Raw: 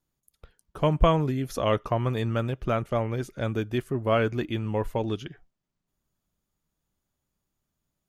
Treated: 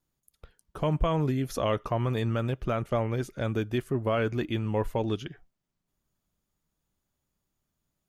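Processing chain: peak limiter -17.5 dBFS, peak gain reduction 8.5 dB

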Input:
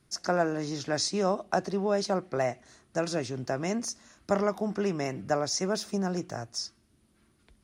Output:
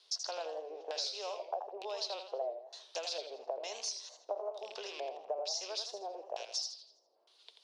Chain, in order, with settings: rattle on loud lows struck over -41 dBFS, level -33 dBFS; LFO low-pass square 1.1 Hz 670–4100 Hz; tilt shelf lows -6 dB, about 1.2 kHz; compression 10:1, threshold -38 dBFS, peak gain reduction 19.5 dB; Chebyshev high-pass 460 Hz, order 4; high-order bell 1.7 kHz -12 dB 1.2 oct; modulated delay 82 ms, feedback 41%, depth 153 cents, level -8 dB; trim +4 dB

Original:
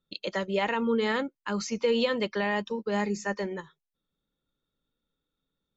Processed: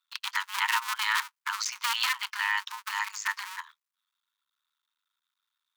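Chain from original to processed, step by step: cycle switcher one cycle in 2, muted; steep high-pass 920 Hz 96 dB/octave; trim +7.5 dB

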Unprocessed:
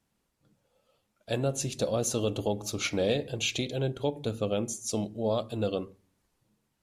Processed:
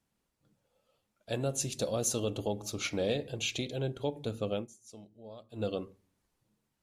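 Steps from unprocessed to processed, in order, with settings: 1.40–2.20 s: treble shelf 4.7 kHz +6 dB; 4.56–5.63 s: dip -16 dB, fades 0.12 s; trim -4 dB

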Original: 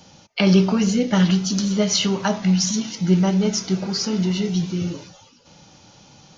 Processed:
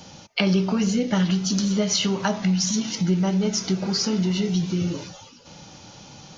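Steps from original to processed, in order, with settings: compression 2.5:1, threshold -27 dBFS, peak gain reduction 11 dB; trim +4.5 dB

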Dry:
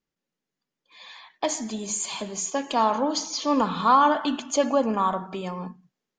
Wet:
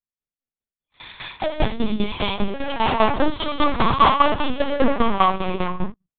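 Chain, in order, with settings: waveshaping leveller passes 5; gated-style reverb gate 220 ms rising, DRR -5.5 dB; tremolo saw down 5 Hz, depth 85%; LPC vocoder at 8 kHz pitch kept; trim -7 dB

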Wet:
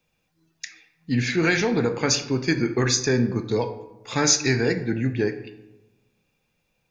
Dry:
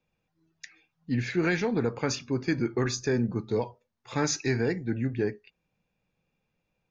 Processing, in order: treble shelf 2.5 kHz +9 dB; reverberation RT60 1.1 s, pre-delay 22 ms, DRR 9.5 dB; trim +4 dB

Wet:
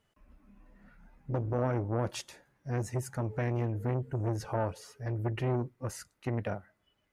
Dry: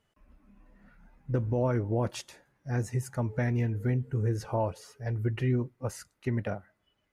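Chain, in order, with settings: transformer saturation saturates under 460 Hz

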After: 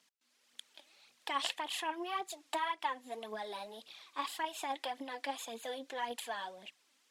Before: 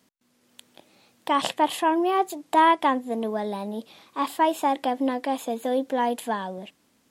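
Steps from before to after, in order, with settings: compression 12:1, threshold -23 dBFS, peak gain reduction 10.5 dB; band-pass filter 3.8 kHz, Q 0.55; phaser 1.8 Hz, delay 3.9 ms, feedback 55%; trim -3 dB

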